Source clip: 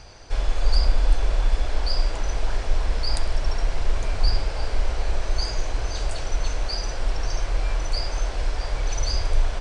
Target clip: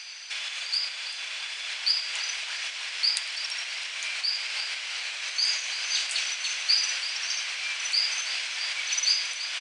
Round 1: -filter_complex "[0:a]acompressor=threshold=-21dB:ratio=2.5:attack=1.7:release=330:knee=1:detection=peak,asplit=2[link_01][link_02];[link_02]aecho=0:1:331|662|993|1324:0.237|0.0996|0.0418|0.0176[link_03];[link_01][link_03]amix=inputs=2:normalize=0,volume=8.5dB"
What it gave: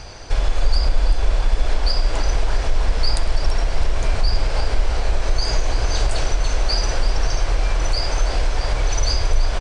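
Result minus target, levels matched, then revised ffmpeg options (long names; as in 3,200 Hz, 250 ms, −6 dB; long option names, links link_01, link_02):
2,000 Hz band −5.0 dB
-filter_complex "[0:a]acompressor=threshold=-21dB:ratio=2.5:attack=1.7:release=330:knee=1:detection=peak,highpass=frequency=2500:width_type=q:width=1.9,asplit=2[link_01][link_02];[link_02]aecho=0:1:331|662|993|1324:0.237|0.0996|0.0418|0.0176[link_03];[link_01][link_03]amix=inputs=2:normalize=0,volume=8.5dB"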